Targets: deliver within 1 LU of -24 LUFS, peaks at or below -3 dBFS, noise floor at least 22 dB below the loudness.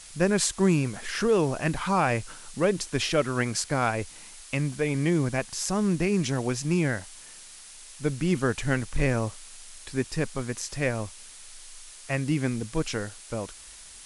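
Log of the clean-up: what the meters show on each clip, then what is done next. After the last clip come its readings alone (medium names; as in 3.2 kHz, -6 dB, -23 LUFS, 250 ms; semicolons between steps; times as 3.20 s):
noise floor -47 dBFS; noise floor target -50 dBFS; loudness -27.5 LUFS; peak level -9.5 dBFS; loudness target -24.0 LUFS
-> noise reduction 6 dB, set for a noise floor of -47 dBFS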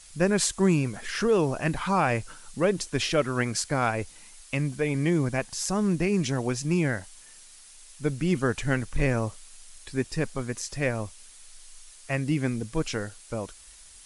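noise floor -50 dBFS; loudness -27.5 LUFS; peak level -9.5 dBFS; loudness target -24.0 LUFS
-> trim +3.5 dB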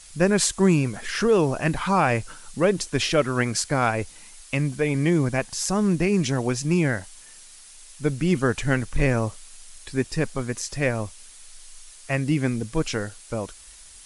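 loudness -24.0 LUFS; peak level -6.0 dBFS; noise floor -47 dBFS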